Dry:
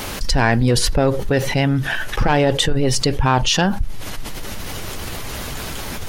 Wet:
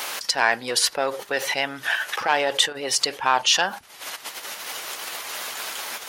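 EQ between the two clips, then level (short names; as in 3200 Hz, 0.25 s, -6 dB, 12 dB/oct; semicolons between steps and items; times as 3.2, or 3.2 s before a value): HPF 750 Hz 12 dB/oct; 0.0 dB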